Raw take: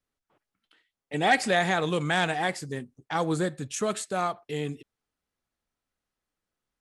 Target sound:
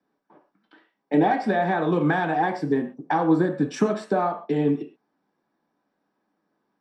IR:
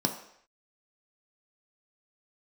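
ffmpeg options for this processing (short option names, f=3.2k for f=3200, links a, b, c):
-filter_complex "[0:a]acrossover=split=230 2900:gain=0.141 1 0.0891[a][b][c];[a][b][c]amix=inputs=3:normalize=0,acompressor=threshold=-36dB:ratio=6[d];[1:a]atrim=start_sample=2205,atrim=end_sample=6174[e];[d][e]afir=irnorm=-1:irlink=0,volume=5.5dB"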